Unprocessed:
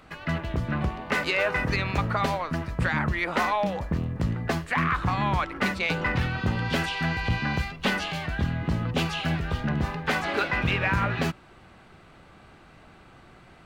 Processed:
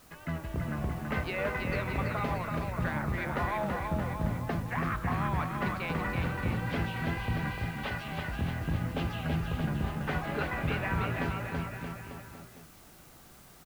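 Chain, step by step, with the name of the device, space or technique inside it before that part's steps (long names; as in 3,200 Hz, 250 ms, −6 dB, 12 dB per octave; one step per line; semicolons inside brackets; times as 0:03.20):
0:07.50–0:08.08: Bessel high-pass filter 580 Hz
cassette deck with a dirty head (head-to-tape spacing loss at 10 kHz 23 dB; tape wow and flutter; white noise bed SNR 25 dB)
bouncing-ball delay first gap 330 ms, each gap 0.9×, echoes 5
level −6 dB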